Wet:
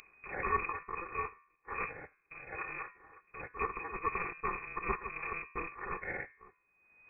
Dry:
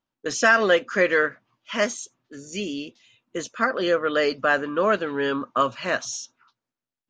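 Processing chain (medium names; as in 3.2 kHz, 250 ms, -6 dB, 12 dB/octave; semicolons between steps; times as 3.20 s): bit-reversed sample order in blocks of 256 samples; in parallel at +3 dB: upward compressor, threshold -22 dBFS; on the sum: peak limiter -4.5 dBFS, peak gain reduction 5 dB; de-hum 78.47 Hz, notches 19; frequency inversion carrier 2.5 kHz; trim -8.5 dB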